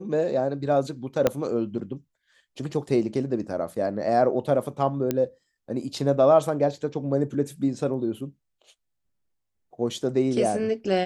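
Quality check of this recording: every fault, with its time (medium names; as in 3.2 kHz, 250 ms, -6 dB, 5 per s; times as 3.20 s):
1.27 s: pop -7 dBFS
5.11 s: pop -11 dBFS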